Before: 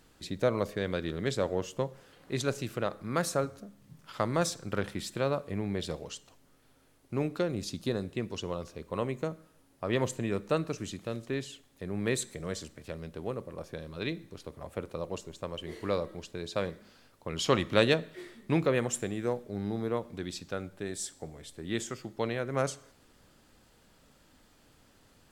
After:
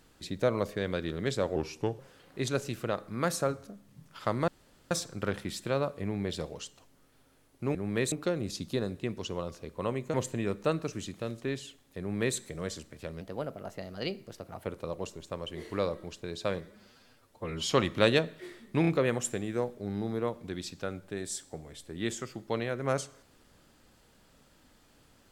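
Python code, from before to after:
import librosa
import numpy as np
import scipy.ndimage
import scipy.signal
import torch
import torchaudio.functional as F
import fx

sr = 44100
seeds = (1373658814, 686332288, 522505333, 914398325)

y = fx.edit(x, sr, fx.speed_span(start_s=1.56, length_s=0.36, speed=0.84),
    fx.insert_room_tone(at_s=4.41, length_s=0.43),
    fx.cut(start_s=9.27, length_s=0.72),
    fx.duplicate(start_s=11.85, length_s=0.37, to_s=7.25),
    fx.speed_span(start_s=13.06, length_s=1.7, speed=1.18),
    fx.stretch_span(start_s=16.72, length_s=0.72, factor=1.5),
    fx.stutter(start_s=18.56, slice_s=0.03, count=3), tone=tone)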